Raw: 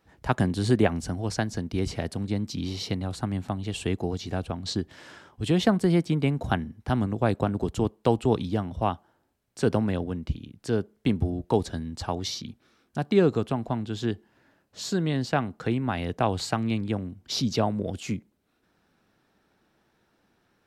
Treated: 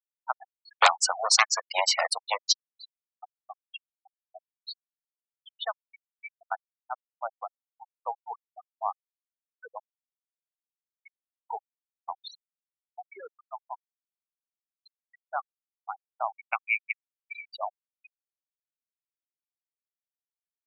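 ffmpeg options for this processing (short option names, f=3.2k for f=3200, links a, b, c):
-filter_complex "[0:a]asettb=1/sr,asplit=3[a][b][c];[a]atrim=end=0.824[d];[b]atrim=start=0.82:end=2.53,asetpts=PTS-STARTPTS,afade=t=in:d=0.004:c=qsin,afade=t=out:st=1.706:d=0.004:c=qsin,aeval=exprs='0.422*sin(PI/2*5.01*val(0)/0.422)':c=same[e];[c]atrim=start=2.526[f];[d][e]acrossfade=d=0.004:c1=hsin:c2=qsin[g];[g][f]acrossfade=d=0.004:c1=qsin:c2=hsin,asplit=3[h][i][j];[h]afade=t=out:st=16.29:d=0.02[k];[i]lowpass=f=2.3k:t=q:w=8.6,afade=t=in:st=16.29:d=0.02,afade=t=out:st=17.47:d=0.02[l];[j]afade=t=in:st=17.47:d=0.02[m];[k][l][m]amix=inputs=3:normalize=0,highpass=f=780:w=0.5412,highpass=f=780:w=1.3066,bandreject=f=1.6k:w=9.5,afftfilt=real='re*gte(hypot(re,im),0.1)':imag='im*gte(hypot(re,im),0.1)':win_size=1024:overlap=0.75"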